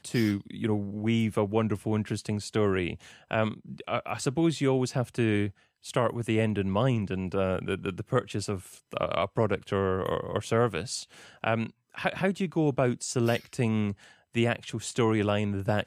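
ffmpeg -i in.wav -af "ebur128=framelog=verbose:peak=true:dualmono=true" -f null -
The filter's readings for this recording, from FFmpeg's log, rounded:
Integrated loudness:
  I:         -26.0 LUFS
  Threshold: -36.1 LUFS
Loudness range:
  LRA:         1.8 LU
  Threshold: -46.2 LUFS
  LRA low:   -27.0 LUFS
  LRA high:  -25.2 LUFS
True peak:
  Peak:      -10.9 dBFS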